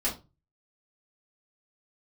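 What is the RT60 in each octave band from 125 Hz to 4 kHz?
0.50, 0.35, 0.30, 0.25, 0.20, 0.20 seconds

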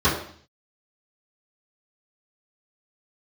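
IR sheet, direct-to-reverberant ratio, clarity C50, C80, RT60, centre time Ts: −13.0 dB, 6.0 dB, 9.0 dB, 0.55 s, 34 ms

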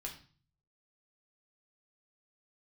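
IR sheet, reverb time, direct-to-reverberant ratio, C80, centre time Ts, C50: 0.40 s, −0.5 dB, 13.5 dB, 18 ms, 9.0 dB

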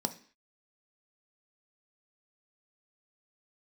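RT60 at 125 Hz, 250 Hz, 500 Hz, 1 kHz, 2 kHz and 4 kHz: 0.35 s, 0.45 s, 0.45 s, 0.45 s, 0.55 s, can't be measured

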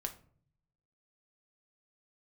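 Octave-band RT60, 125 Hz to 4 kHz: 1.2, 0.85, 0.60, 0.45, 0.35, 0.30 seconds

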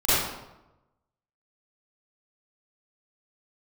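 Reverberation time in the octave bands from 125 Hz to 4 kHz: 1.2, 1.0, 1.0, 0.95, 0.75, 0.65 seconds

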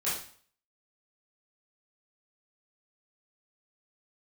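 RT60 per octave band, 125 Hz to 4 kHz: 0.55, 0.50, 0.50, 0.50, 0.50, 0.45 seconds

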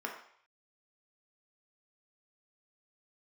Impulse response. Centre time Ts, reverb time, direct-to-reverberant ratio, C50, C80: 26 ms, 0.60 s, 0.0 dB, 6.0 dB, 9.5 dB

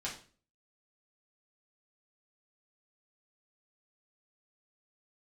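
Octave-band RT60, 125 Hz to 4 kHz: 0.55, 0.50, 0.45, 0.35, 0.40, 0.35 seconds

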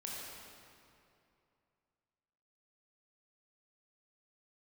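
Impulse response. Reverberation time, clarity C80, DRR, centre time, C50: 2.6 s, −1.0 dB, −4.5 dB, 149 ms, −2.5 dB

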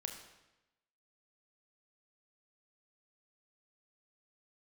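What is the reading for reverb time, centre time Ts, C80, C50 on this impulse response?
0.95 s, 28 ms, 8.5 dB, 6.5 dB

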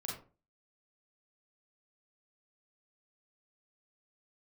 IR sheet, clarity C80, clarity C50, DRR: 9.0 dB, 3.5 dB, −3.5 dB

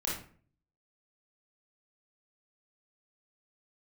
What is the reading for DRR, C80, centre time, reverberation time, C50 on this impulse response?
−5.5 dB, 8.5 dB, 43 ms, 0.45 s, 2.0 dB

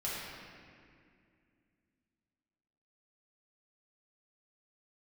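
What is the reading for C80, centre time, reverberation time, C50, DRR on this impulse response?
−0.5 dB, 136 ms, 2.2 s, −2.5 dB, −8.5 dB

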